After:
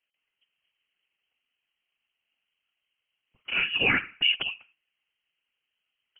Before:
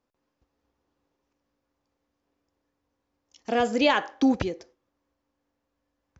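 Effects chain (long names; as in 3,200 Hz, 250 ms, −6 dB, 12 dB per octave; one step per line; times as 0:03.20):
voice inversion scrambler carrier 3,100 Hz
0:03.62–0:04.36: hollow resonant body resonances 270/1,700 Hz, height 15 dB
random phases in short frames
level −3.5 dB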